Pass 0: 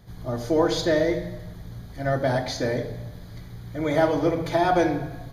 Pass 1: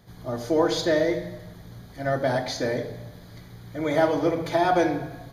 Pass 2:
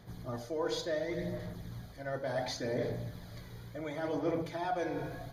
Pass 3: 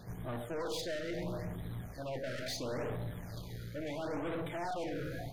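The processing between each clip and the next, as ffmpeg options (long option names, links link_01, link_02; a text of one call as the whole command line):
ffmpeg -i in.wav -af "lowshelf=frequency=93:gain=-11.5" out.wav
ffmpeg -i in.wav -af "areverse,acompressor=threshold=-31dB:ratio=4,areverse,aphaser=in_gain=1:out_gain=1:delay=2.1:decay=0.35:speed=0.7:type=sinusoidal,volume=-3.5dB" out.wav
ffmpeg -i in.wav -af "aeval=exprs='(tanh(112*val(0)+0.4)-tanh(0.4))/112':channel_layout=same,afftfilt=real='re*(1-between(b*sr/1024,870*pow(5900/870,0.5+0.5*sin(2*PI*0.74*pts/sr))/1.41,870*pow(5900/870,0.5+0.5*sin(2*PI*0.74*pts/sr))*1.41))':imag='im*(1-between(b*sr/1024,870*pow(5900/870,0.5+0.5*sin(2*PI*0.74*pts/sr))/1.41,870*pow(5900/870,0.5+0.5*sin(2*PI*0.74*pts/sr))*1.41))':win_size=1024:overlap=0.75,volume=5.5dB" out.wav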